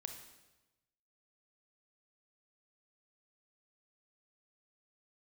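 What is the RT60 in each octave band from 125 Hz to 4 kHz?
1.4 s, 1.1 s, 1.1 s, 1.0 s, 1.0 s, 0.95 s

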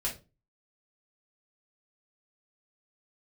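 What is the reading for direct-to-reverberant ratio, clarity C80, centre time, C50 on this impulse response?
-4.0 dB, 17.5 dB, 19 ms, 10.0 dB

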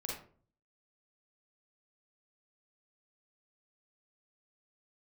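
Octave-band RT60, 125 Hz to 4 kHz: 0.75 s, 0.60 s, 0.50 s, 0.40 s, 0.35 s, 0.25 s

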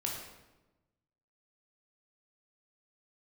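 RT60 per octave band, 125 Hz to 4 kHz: 1.5 s, 1.4 s, 1.2 s, 1.0 s, 0.85 s, 0.75 s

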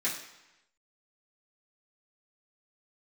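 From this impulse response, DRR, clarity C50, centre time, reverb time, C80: -10.5 dB, 6.5 dB, 32 ms, 0.95 s, 9.0 dB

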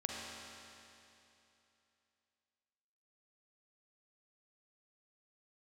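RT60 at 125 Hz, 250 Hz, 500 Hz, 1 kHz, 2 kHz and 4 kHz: 2.9 s, 2.9 s, 2.9 s, 2.9 s, 2.9 s, 2.8 s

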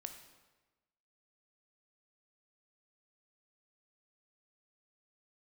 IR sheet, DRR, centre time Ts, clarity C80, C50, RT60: 6.0 dB, 21 ms, 10.0 dB, 8.0 dB, 1.2 s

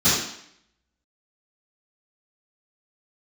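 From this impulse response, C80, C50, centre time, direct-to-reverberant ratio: 4.0 dB, 0.0 dB, 61 ms, -16.0 dB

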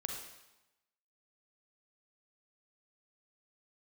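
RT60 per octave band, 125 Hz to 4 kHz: 0.95 s, 0.95 s, 0.90 s, 1.0 s, 0.95 s, 0.90 s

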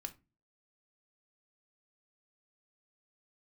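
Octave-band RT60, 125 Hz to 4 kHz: 0.50 s, 0.45 s, 0.30 s, 0.25 s, 0.20 s, 0.20 s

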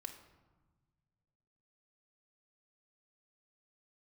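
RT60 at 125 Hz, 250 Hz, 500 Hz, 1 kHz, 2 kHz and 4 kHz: 2.6 s, 2.0 s, 1.3 s, 1.3 s, 0.95 s, 0.70 s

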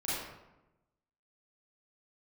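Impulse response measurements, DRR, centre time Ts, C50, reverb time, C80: -10.0 dB, 90 ms, -3.0 dB, 1.0 s, 1.0 dB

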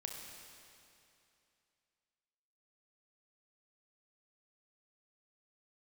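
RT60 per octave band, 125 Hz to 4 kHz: 2.7 s, 2.7 s, 2.7 s, 2.7 s, 2.7 s, 2.6 s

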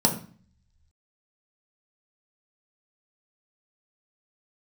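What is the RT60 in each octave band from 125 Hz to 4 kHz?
1.1 s, 0.70 s, 0.40 s, 0.45 s, 0.45 s, 0.40 s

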